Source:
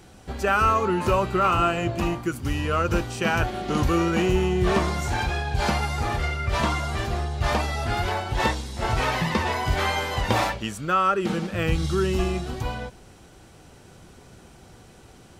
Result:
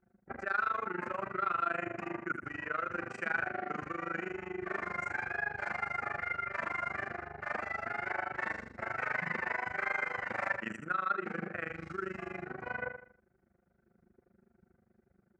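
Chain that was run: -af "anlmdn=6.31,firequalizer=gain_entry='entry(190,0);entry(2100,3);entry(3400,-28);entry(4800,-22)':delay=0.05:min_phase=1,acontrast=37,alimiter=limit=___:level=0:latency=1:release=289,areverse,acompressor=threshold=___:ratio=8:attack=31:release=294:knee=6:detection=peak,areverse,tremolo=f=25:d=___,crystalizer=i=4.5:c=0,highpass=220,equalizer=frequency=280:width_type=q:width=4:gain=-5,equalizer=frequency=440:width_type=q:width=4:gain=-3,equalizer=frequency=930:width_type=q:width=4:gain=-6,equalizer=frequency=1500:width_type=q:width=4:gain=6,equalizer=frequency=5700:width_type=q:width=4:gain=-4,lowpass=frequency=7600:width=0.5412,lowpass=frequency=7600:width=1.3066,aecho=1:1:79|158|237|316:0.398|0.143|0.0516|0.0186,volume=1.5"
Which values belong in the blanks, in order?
0.158, 0.0158, 0.947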